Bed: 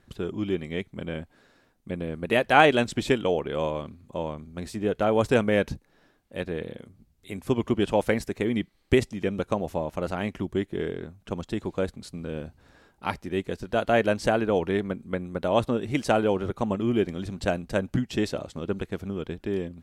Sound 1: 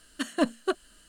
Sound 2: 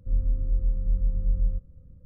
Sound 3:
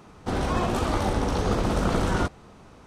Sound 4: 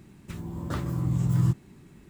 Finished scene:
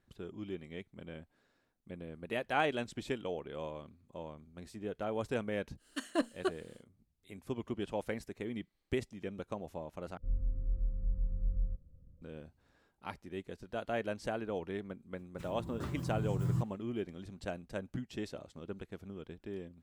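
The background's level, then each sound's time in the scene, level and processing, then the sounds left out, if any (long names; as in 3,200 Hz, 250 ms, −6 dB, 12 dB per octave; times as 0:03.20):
bed −14 dB
0:05.77: mix in 1 −7.5 dB, fades 0.10 s + low shelf with overshoot 240 Hz −6.5 dB, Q 1.5
0:10.17: overwrite with 2 −9.5 dB
0:15.10: mix in 4 −10 dB, fades 0.10 s + noise gate with hold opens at −41 dBFS, closes at −49 dBFS
not used: 3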